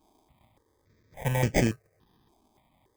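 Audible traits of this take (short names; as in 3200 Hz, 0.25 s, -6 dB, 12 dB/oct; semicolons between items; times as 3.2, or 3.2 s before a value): aliases and images of a low sample rate 1400 Hz, jitter 0%; random-step tremolo, depth 55%; notches that jump at a steady rate 3.5 Hz 510–3900 Hz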